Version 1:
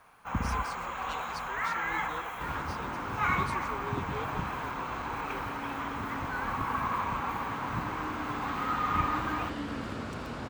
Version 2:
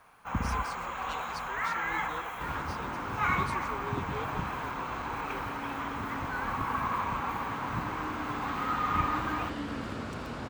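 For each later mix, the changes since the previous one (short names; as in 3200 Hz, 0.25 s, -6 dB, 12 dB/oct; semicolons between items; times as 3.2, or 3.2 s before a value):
none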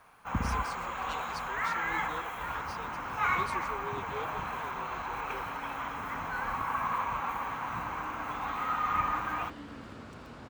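second sound -9.0 dB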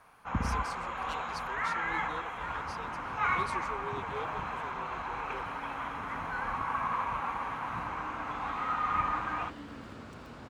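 first sound: add air absorption 90 m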